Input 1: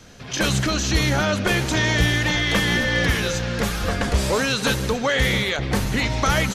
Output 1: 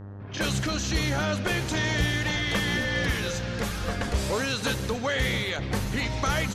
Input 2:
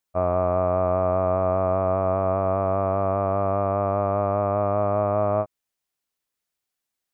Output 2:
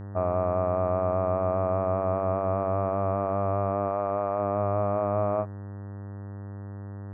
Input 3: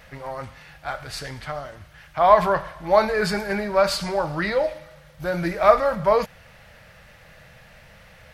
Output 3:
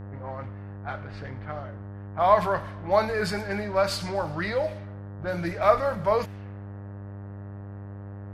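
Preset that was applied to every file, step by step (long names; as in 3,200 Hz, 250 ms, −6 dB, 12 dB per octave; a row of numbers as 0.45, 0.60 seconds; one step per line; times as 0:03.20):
low-pass that shuts in the quiet parts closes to 760 Hz, open at −20 dBFS
hum with harmonics 100 Hz, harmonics 19, −34 dBFS −8 dB per octave
loudness normalisation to −27 LKFS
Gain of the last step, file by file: −6.5, −4.0, −5.0 decibels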